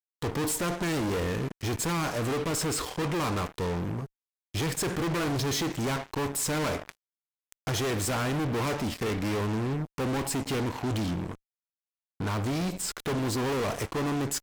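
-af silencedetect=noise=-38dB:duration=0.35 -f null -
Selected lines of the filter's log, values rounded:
silence_start: 4.06
silence_end: 4.54 | silence_duration: 0.49
silence_start: 6.92
silence_end: 7.52 | silence_duration: 0.61
silence_start: 11.35
silence_end: 12.20 | silence_duration: 0.85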